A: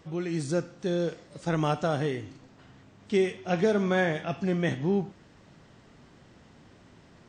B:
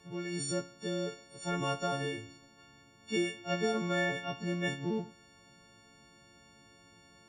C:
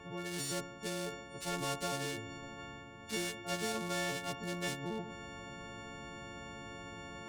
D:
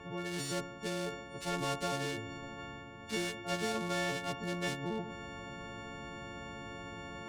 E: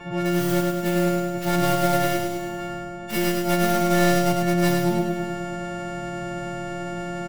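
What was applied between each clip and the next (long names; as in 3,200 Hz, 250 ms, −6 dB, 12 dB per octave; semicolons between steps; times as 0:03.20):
every partial snapped to a pitch grid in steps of 4 semitones; level −7.5 dB
adaptive Wiener filter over 9 samples; reversed playback; upward compression, threshold −45 dBFS; reversed playback; every bin compressed towards the loudest bin 2 to 1; level −3.5 dB
high-shelf EQ 6,900 Hz −9 dB; level +2.5 dB
stylus tracing distortion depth 0.24 ms; comb filter 5.8 ms, depth 93%; on a send: repeating echo 103 ms, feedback 59%, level −3.5 dB; on the sum: level +7 dB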